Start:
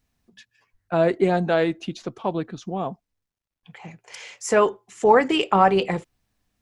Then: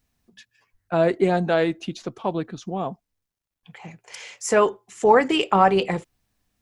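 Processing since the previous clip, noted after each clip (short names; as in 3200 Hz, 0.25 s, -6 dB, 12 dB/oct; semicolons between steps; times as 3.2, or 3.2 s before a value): high shelf 7500 Hz +4 dB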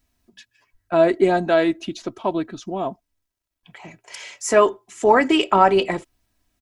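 comb 3.1 ms, depth 51%; gain +1.5 dB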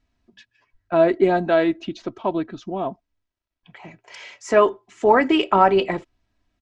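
air absorption 140 m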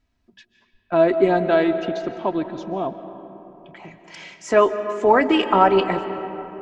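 digital reverb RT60 3.6 s, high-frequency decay 0.4×, pre-delay 0.105 s, DRR 10 dB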